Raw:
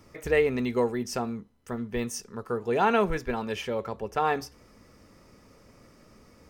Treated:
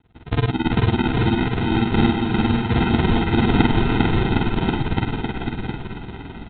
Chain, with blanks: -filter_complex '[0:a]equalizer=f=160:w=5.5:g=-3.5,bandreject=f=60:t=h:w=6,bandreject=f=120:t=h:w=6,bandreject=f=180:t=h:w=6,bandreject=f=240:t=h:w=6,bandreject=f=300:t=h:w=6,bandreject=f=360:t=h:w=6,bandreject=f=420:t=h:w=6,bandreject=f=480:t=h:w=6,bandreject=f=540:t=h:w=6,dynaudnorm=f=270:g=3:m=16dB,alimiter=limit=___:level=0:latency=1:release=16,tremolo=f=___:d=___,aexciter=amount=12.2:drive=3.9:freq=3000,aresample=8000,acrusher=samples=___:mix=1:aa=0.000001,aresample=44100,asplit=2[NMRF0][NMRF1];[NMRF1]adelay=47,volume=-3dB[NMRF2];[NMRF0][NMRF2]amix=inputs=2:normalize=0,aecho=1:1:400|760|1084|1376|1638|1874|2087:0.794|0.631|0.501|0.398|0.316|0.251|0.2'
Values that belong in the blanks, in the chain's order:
-10dB, 18, 0.99, 14